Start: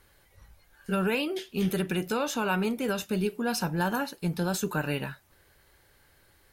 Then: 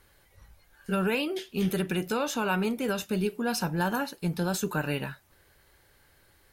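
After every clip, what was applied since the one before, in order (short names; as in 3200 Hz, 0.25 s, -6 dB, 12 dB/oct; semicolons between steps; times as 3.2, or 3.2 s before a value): nothing audible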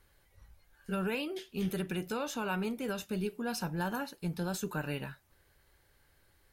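low shelf 84 Hz +5.5 dB; gain -7 dB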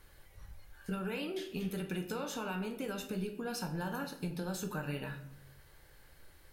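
compressor 6:1, threshold -42 dBFS, peak gain reduction 12 dB; reverb RT60 0.65 s, pre-delay 6 ms, DRR 4.5 dB; gain +5.5 dB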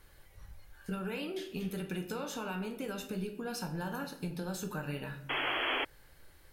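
painted sound noise, 5.29–5.85, 250–3400 Hz -33 dBFS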